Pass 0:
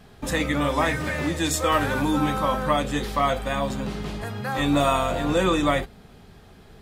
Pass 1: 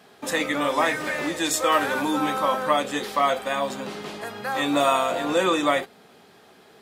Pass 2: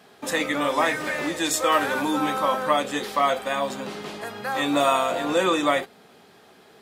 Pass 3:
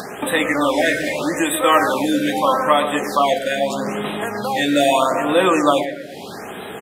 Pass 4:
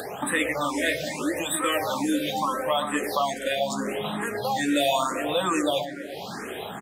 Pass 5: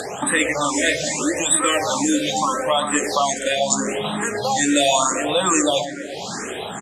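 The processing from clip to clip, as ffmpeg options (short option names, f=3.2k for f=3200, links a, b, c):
-af "highpass=320,volume=1.5dB"
-af anull
-filter_complex "[0:a]acompressor=mode=upward:threshold=-24dB:ratio=2.5,asplit=2[a][b];[b]adelay=121,lowpass=f=2k:p=1,volume=-8.5dB,asplit=2[c][d];[d]adelay=121,lowpass=f=2k:p=1,volume=0.5,asplit=2[e][f];[f]adelay=121,lowpass=f=2k:p=1,volume=0.5,asplit=2[g][h];[h]adelay=121,lowpass=f=2k:p=1,volume=0.5,asplit=2[i][j];[j]adelay=121,lowpass=f=2k:p=1,volume=0.5,asplit=2[k][l];[l]adelay=121,lowpass=f=2k:p=1,volume=0.5[m];[a][c][e][g][i][k][m]amix=inputs=7:normalize=0,afftfilt=real='re*(1-between(b*sr/1024,950*pow(5700/950,0.5+0.5*sin(2*PI*0.79*pts/sr))/1.41,950*pow(5700/950,0.5+0.5*sin(2*PI*0.79*pts/sr))*1.41))':imag='im*(1-between(b*sr/1024,950*pow(5700/950,0.5+0.5*sin(2*PI*0.79*pts/sr))/1.41,950*pow(5700/950,0.5+0.5*sin(2*PI*0.79*pts/sr))*1.41))':win_size=1024:overlap=0.75,volume=6dB"
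-filter_complex "[0:a]acrossover=split=120|3000[a][b][c];[b]acompressor=threshold=-25dB:ratio=2[d];[a][d][c]amix=inputs=3:normalize=0,asplit=2[e][f];[f]afreqshift=2.3[g];[e][g]amix=inputs=2:normalize=1"
-af "lowpass=f=7.2k:t=q:w=4.9,volume=5dB"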